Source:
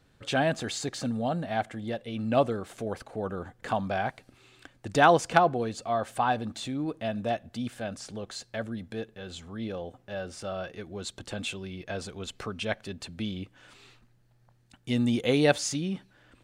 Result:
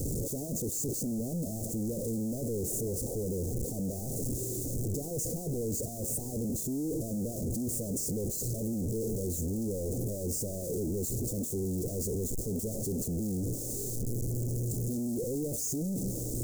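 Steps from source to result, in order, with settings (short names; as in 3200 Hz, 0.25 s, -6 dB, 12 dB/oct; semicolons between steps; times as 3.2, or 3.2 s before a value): infinite clipping; elliptic band-stop 470–6900 Hz, stop band 60 dB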